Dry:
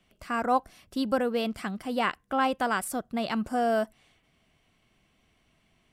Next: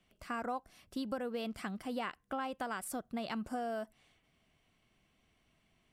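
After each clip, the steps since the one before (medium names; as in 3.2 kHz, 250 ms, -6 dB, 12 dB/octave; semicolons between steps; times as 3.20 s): compression 6:1, threshold -29 dBFS, peak gain reduction 10 dB; trim -5.5 dB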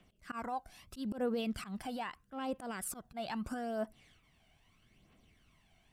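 slow attack 119 ms; peak limiter -33.5 dBFS, peak gain reduction 7 dB; phaser 0.78 Hz, delay 1.4 ms, feedback 53%; trim +2.5 dB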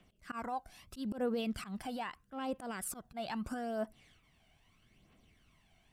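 no audible change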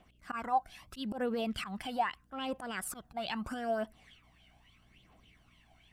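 hum 60 Hz, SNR 27 dB; sweeping bell 3.5 Hz 720–3400 Hz +12 dB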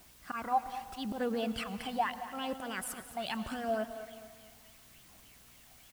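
added noise white -60 dBFS; feedback delay 219 ms, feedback 44%, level -13.5 dB; reverberation RT60 1.5 s, pre-delay 93 ms, DRR 13.5 dB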